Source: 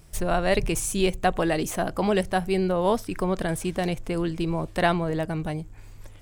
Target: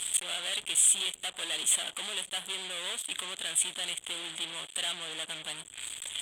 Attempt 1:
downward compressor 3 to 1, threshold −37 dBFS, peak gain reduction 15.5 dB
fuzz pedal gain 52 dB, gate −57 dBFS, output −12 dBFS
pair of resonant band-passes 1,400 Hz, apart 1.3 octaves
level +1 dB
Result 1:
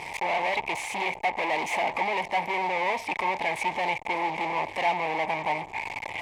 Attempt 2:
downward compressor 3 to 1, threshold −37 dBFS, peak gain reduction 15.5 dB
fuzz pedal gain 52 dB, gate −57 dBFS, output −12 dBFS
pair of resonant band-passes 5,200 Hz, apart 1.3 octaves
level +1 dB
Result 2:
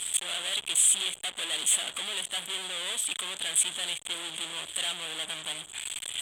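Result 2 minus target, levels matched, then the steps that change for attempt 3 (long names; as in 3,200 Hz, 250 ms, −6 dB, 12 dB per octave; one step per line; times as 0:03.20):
downward compressor: peak gain reduction −7.5 dB
change: downward compressor 3 to 1, threshold −48.5 dBFS, peak gain reduction 23 dB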